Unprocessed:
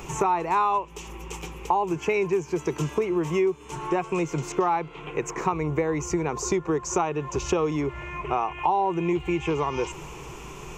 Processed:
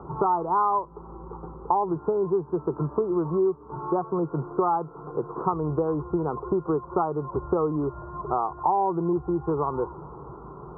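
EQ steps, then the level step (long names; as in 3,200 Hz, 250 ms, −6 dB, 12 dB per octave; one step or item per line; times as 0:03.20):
high-pass filter 63 Hz
Butterworth low-pass 1,400 Hz 96 dB per octave
0.0 dB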